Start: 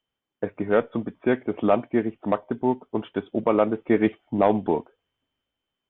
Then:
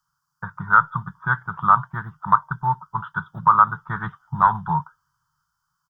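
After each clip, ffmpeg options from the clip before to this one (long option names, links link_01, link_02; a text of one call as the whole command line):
ffmpeg -i in.wav -af "firequalizer=gain_entry='entry(110,0);entry(150,13);entry(240,-29);entry(440,-29);entry(640,-22);entry(940,10);entry(1400,15);entry(2300,-29);entry(4800,14);entry(8200,8)':delay=0.05:min_phase=1,volume=4dB" out.wav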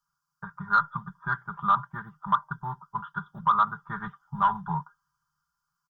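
ffmpeg -i in.wav -af "aecho=1:1:5:0.68,asoftclip=type=tanh:threshold=-2dB,volume=-8dB" out.wav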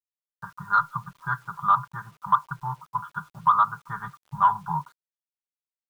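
ffmpeg -i in.wav -af "equalizer=frequency=125:width_type=o:width=1:gain=9,equalizer=frequency=250:width_type=o:width=1:gain=-11,equalizer=frequency=1000:width_type=o:width=1:gain=8,acrusher=bits=8:mix=0:aa=0.000001,volume=-3.5dB" out.wav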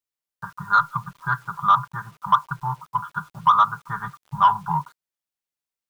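ffmpeg -i in.wav -af "asoftclip=type=tanh:threshold=-10dB,volume=4.5dB" out.wav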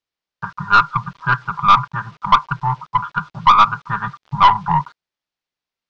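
ffmpeg -i in.wav -af "aeval=exprs='(tanh(3.98*val(0)+0.35)-tanh(0.35))/3.98':channel_layout=same,lowpass=frequency=5300:width=0.5412,lowpass=frequency=5300:width=1.3066,volume=8.5dB" out.wav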